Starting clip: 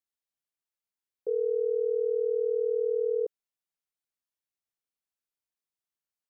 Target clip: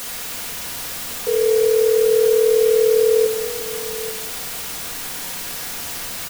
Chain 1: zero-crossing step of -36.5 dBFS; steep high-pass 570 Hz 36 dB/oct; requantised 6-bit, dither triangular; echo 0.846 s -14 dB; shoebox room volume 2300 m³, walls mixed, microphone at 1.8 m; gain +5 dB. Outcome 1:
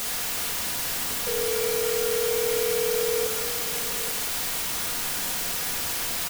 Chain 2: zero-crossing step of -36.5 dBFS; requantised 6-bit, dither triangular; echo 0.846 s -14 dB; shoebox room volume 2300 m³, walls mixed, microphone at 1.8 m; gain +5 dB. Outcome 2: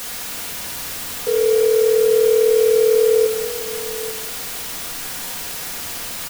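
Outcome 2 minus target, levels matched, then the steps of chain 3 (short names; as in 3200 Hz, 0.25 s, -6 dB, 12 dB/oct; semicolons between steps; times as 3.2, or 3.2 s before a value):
zero-crossing step: distortion +6 dB
zero-crossing step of -43.5 dBFS; requantised 6-bit, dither triangular; echo 0.846 s -14 dB; shoebox room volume 2300 m³, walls mixed, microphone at 1.8 m; gain +5 dB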